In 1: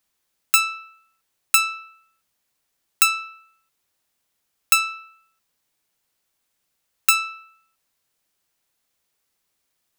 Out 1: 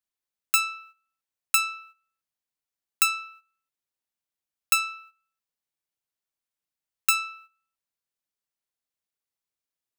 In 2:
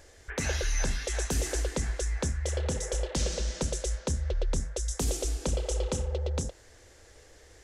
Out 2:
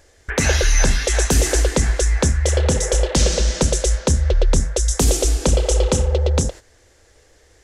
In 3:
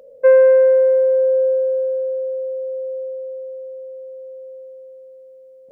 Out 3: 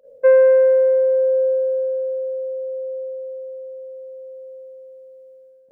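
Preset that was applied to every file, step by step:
gate -45 dBFS, range -12 dB; normalise peaks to -6 dBFS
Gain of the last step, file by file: -5.0, +13.5, -1.5 dB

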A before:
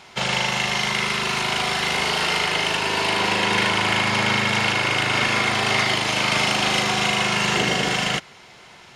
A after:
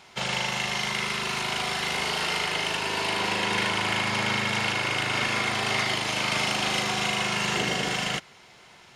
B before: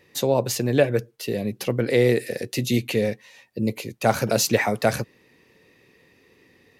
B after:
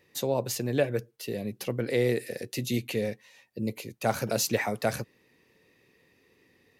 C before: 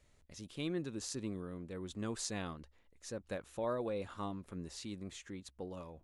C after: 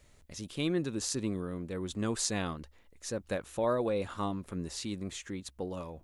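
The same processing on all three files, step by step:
high shelf 9000 Hz +4 dB; normalise peaks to -12 dBFS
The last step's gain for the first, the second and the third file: -6.0, -7.0, +7.0 dB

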